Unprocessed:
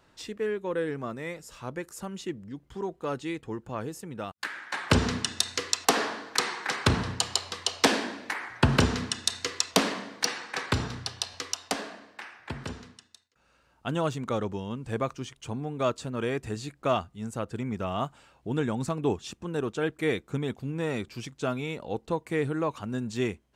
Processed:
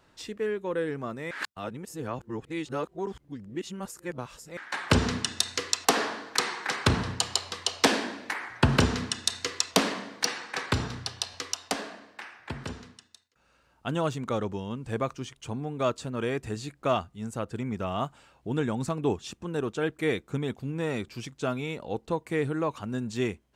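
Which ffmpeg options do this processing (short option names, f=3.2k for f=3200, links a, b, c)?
-filter_complex "[0:a]asplit=3[a][b][c];[a]atrim=end=1.312[d];[b]atrim=start=1.308:end=4.572,asetpts=PTS-STARTPTS,areverse[e];[c]atrim=start=4.568[f];[d][e]acrossfade=d=0.004:c1=hsin:c2=hsin[g];[g][f]acrossfade=d=0.004:c1=hsin:c2=hsin"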